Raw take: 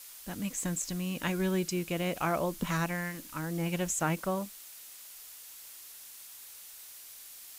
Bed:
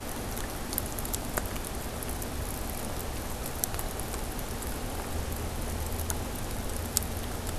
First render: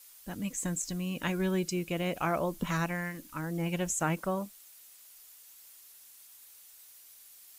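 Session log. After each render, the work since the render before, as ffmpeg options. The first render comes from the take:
-af "afftdn=nr=8:nf=-49"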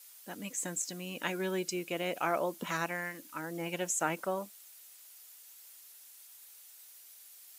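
-af "highpass=310,bandreject=f=1.1k:w=17"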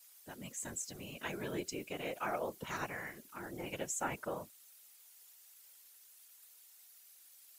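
-af "afftfilt=real='hypot(re,im)*cos(2*PI*random(0))':imag='hypot(re,im)*sin(2*PI*random(1))':win_size=512:overlap=0.75"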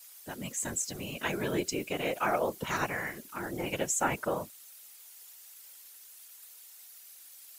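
-af "volume=8.5dB"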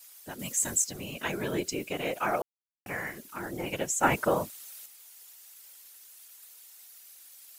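-filter_complex "[0:a]asettb=1/sr,asplit=3[a][b][c];[a]atrim=end=0.394[d];[b]atrim=start=0.39:end=0.84,asetpts=PTS-STARTPTS,afade=t=in:d=0.004:c=qsin,afade=t=out:st=0.446:d=0.004:c=qsin,highshelf=f=4.1k:g=8.5[e];[c]atrim=start=0.836[f];[d][e]acrossfade=d=0.004:c1=hsin:c2=qsin[g];[g][f]acrossfade=d=0.004:c1=qsin:c2=hsin,asettb=1/sr,asplit=3[h][i][j];[h]atrim=end=4.034[k];[i]atrim=start=4.03:end=4.86,asetpts=PTS-STARTPTS,afade=t=in:d=0.004:c=qsin,afade=t=out:st=0.826:d=0.004:c=qsin,acontrast=46[l];[j]atrim=start=4.856[m];[k][l]acrossfade=d=0.004:c1=hsin:c2=qsin[n];[n][m]acrossfade=d=0.004:c1=qsin:c2=hsin,asplit=3[o][p][q];[o]atrim=end=2.42,asetpts=PTS-STARTPTS,afade=t=out:st=2.416:d=0.004:c=hsin[r];[p]atrim=start=2.42:end=2.86,asetpts=PTS-STARTPTS,volume=0[s];[q]atrim=start=2.86,asetpts=PTS-STARTPTS,afade=t=in:d=0.004:c=hsin[t];[r][s][t]concat=n=3:v=0:a=1"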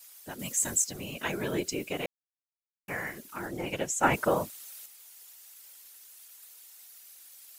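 -filter_complex "[0:a]asettb=1/sr,asplit=3[a][b][c];[a]atrim=end=3.474[d];[b]atrim=start=3.47:end=4.14,asetpts=PTS-STARTPTS,afade=t=in:d=0.004:c=qsin,afade=t=out:st=0.666:d=0.004:c=qsin,highshelf=f=12k:g=-8.5[e];[c]atrim=start=4.136[f];[d][e]acrossfade=d=0.004:c1=hsin:c2=qsin[g];[g][f]acrossfade=d=0.004:c1=qsin:c2=hsin,asplit=3[h][i][j];[h]atrim=end=2.06,asetpts=PTS-STARTPTS,afade=t=out:st=2.056:d=0.004:c=hsin[k];[i]atrim=start=2.06:end=2.88,asetpts=PTS-STARTPTS,volume=0[l];[j]atrim=start=2.88,asetpts=PTS-STARTPTS,afade=t=in:d=0.004:c=hsin[m];[k][l][m]concat=n=3:v=0:a=1"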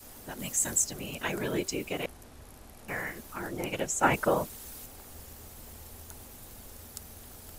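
-filter_complex "[1:a]volume=-16dB[a];[0:a][a]amix=inputs=2:normalize=0"

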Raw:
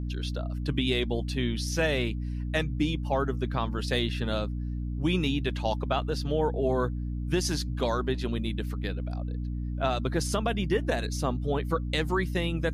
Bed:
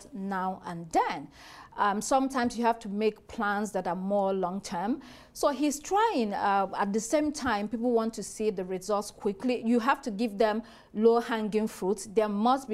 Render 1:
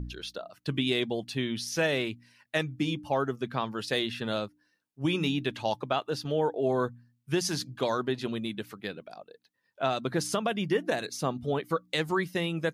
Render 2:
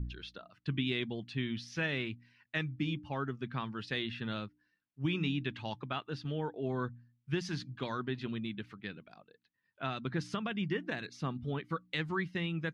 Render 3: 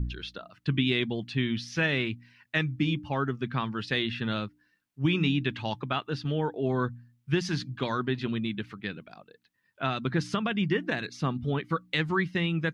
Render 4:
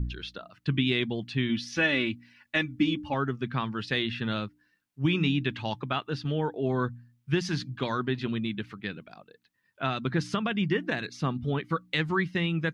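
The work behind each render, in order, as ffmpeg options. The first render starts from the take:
-af "bandreject=f=60:t=h:w=4,bandreject=f=120:t=h:w=4,bandreject=f=180:t=h:w=4,bandreject=f=240:t=h:w=4,bandreject=f=300:t=h:w=4"
-af "lowpass=2.6k,equalizer=f=600:w=0.8:g=-14.5"
-af "volume=7.5dB"
-filter_complex "[0:a]asettb=1/sr,asplit=3[a][b][c];[a]atrim=end=1.494[d];[b]atrim=start=1.49:end=3.14,asetpts=PTS-STARTPTS,afade=t=in:d=0.004:c=qsin,afade=t=out:st=1.646:d=0.004:c=qsin,aecho=1:1:3.5:0.65,atrim=end_sample=72765[e];[c]atrim=start=3.136[f];[d][e]acrossfade=d=0.004:c1=hsin:c2=qsin[g];[g][f]acrossfade=d=0.004:c1=qsin:c2=hsin"

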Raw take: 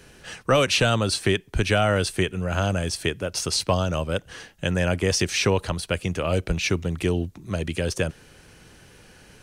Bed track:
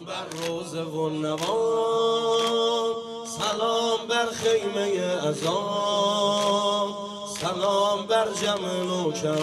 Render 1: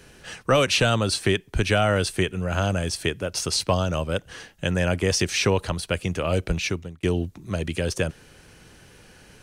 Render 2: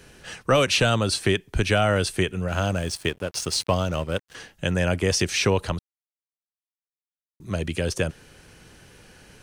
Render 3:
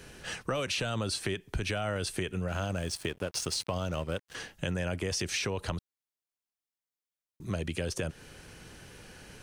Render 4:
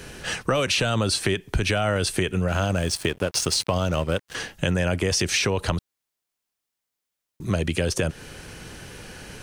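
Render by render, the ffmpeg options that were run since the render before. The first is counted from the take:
-filter_complex "[0:a]asplit=2[a][b];[a]atrim=end=7.03,asetpts=PTS-STARTPTS,afade=t=out:st=6.56:d=0.47[c];[b]atrim=start=7.03,asetpts=PTS-STARTPTS,afade=t=in:d=0.004:c=hsin[d];[c][d]concat=n=2:v=0:a=1"
-filter_complex "[0:a]asettb=1/sr,asplit=3[a][b][c];[a]atrim=end=2.484[d];[b]atrim=start=2.48:end=4.35,asetpts=PTS-STARTPTS,afade=t=in:d=0.004:c=qsin,afade=t=out:st=1.866:d=0.004:c=qsin,aeval=exprs='sgn(val(0))*max(abs(val(0))-0.00944,0)':c=same[e];[c]atrim=start=4.346[f];[d][e]acrossfade=d=0.004:c1=hsin:c2=qsin[g];[g][f]acrossfade=d=0.004:c1=qsin:c2=hsin,asplit=3[h][i][j];[h]atrim=end=5.79,asetpts=PTS-STARTPTS,afade=t=out:st=5.786:d=0.004:c=hsin[k];[i]atrim=start=5.79:end=7.4,asetpts=PTS-STARTPTS,volume=0[l];[j]atrim=start=7.4,asetpts=PTS-STARTPTS,afade=t=in:d=0.004:c=hsin[m];[k][l][m]concat=n=3:v=0:a=1"
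-af "alimiter=limit=-15.5dB:level=0:latency=1:release=24,acompressor=threshold=-30dB:ratio=4"
-af "volume=9.5dB"

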